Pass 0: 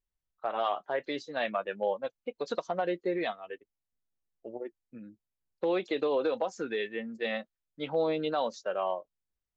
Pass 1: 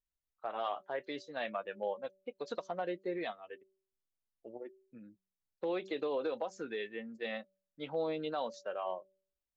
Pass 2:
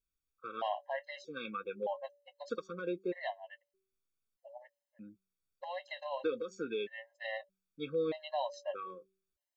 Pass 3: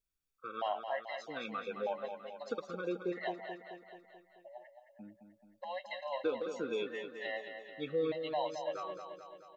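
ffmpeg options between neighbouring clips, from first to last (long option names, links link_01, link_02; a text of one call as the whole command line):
ffmpeg -i in.wav -af "bandreject=frequency=191.5:width_type=h:width=4,bandreject=frequency=383:width_type=h:width=4,bandreject=frequency=574.5:width_type=h:width=4,volume=-6.5dB" out.wav
ffmpeg -i in.wav -af "afftfilt=real='re*gt(sin(2*PI*0.8*pts/sr)*(1-2*mod(floor(b*sr/1024/540),2)),0)':imag='im*gt(sin(2*PI*0.8*pts/sr)*(1-2*mod(floor(b*sr/1024/540),2)),0)':win_size=1024:overlap=0.75,volume=3dB" out.wav
ffmpeg -i in.wav -af "aecho=1:1:217|434|651|868|1085|1302|1519:0.398|0.235|0.139|0.0818|0.0482|0.0285|0.0168" out.wav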